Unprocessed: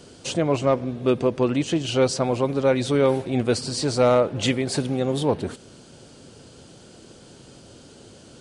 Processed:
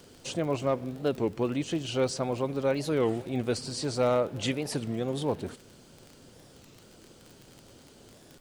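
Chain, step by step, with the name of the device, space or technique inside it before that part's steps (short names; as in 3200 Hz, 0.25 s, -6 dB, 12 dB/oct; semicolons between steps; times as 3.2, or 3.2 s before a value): warped LP (record warp 33 1/3 rpm, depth 250 cents; crackle 33/s -30 dBFS; pink noise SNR 32 dB); gain -7.5 dB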